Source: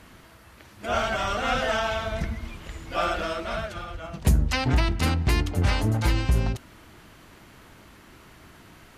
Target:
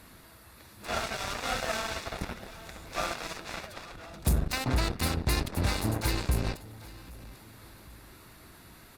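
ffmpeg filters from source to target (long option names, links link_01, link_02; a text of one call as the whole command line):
ffmpeg -i in.wav -filter_complex "[0:a]aexciter=amount=1.4:drive=6.5:freq=3500,asplit=2[link_01][link_02];[link_02]acompressor=threshold=-34dB:ratio=6,volume=-0.5dB[link_03];[link_01][link_03]amix=inputs=2:normalize=0,aecho=1:1:791|1582|2373:0.211|0.0634|0.019,asoftclip=type=tanh:threshold=-19dB,aeval=exprs='0.112*(cos(1*acos(clip(val(0)/0.112,-1,1)))-cos(1*PI/2))+0.0562*(cos(3*acos(clip(val(0)/0.112,-1,1)))-cos(3*PI/2))':channel_layout=same,bandreject=frequency=3100:width=8.6,volume=-3dB" -ar 48000 -c:a libopus -b:a 64k out.opus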